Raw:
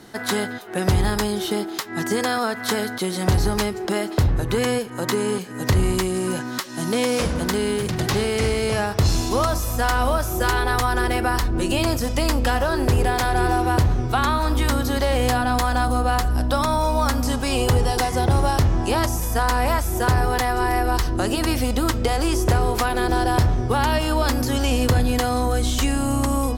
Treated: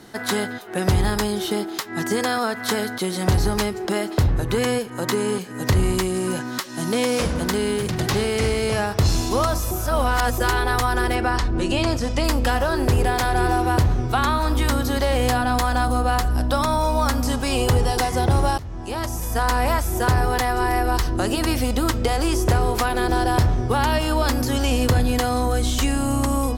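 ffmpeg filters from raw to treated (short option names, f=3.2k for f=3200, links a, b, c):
-filter_complex "[0:a]asettb=1/sr,asplit=3[a][b][c];[a]atrim=end=11.154[d];[b]atrim=start=11.15:end=12.24,asetpts=PTS-STARTPTS,afade=t=in:d=0.004:c=qsin,afade=t=out:st=1.086:d=0.004:c=qsin,lowpass=7.1k[e];[c]atrim=start=12.236[f];[d][e]acrossfade=d=0.004:c1=hsin:c2=qsin[g];[g][f]acrossfade=d=0.004:c1=qsin:c2=hsin,asplit=4[h][i][j][k];[h]atrim=end=9.712[l];[i]atrim=start=9.708:end=10.382,asetpts=PTS-STARTPTS,areverse[m];[j]atrim=start=10.378:end=18.58,asetpts=PTS-STARTPTS,afade=t=out:st=8.198:d=0.004:c=hsin:silence=0.0841395[n];[k]atrim=start=18.58,asetpts=PTS-STARTPTS,afade=t=in:d=0.91:silence=0.0841395[o];[l][m]acrossfade=d=0.004:c1=hsin:c2=hsin[p];[n][o]concat=n=2:v=0:a=1[q];[p][q]acrossfade=d=0.004:c1=hsin:c2=hsin"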